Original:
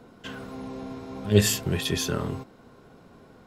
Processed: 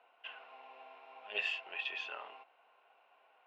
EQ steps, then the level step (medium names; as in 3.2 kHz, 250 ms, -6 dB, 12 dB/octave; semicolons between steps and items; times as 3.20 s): ladder high-pass 660 Hz, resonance 55%; resonant low-pass 2.7 kHz, resonance Q 7.9; distance through air 72 m; -6.0 dB